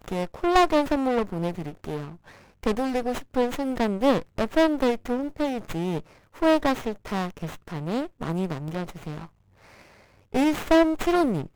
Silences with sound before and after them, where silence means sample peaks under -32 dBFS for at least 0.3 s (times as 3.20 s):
2.09–2.63 s
6.00–6.42 s
9.24–10.34 s